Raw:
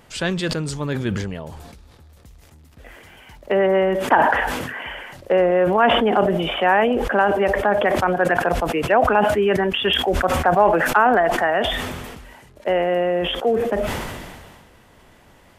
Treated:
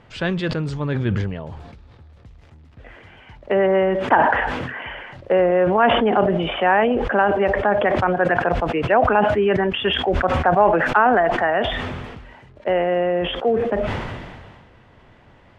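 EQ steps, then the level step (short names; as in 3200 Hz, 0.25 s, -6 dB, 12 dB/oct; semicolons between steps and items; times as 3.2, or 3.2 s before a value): LPF 3200 Hz 12 dB/oct; bell 110 Hz +6.5 dB 0.61 oct; 0.0 dB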